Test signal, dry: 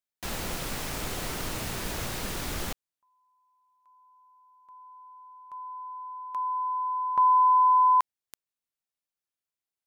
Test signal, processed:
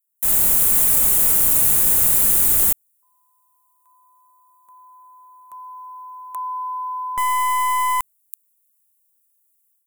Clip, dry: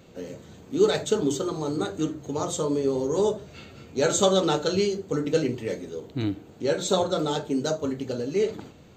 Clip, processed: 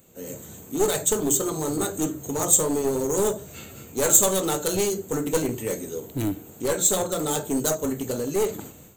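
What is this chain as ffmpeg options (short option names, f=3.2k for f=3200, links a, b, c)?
-af "dynaudnorm=f=150:g=3:m=10dB,aeval=exprs='clip(val(0),-1,0.168)':c=same,aexciter=amount=7.4:drive=9.3:freq=7.4k,volume=-7.5dB"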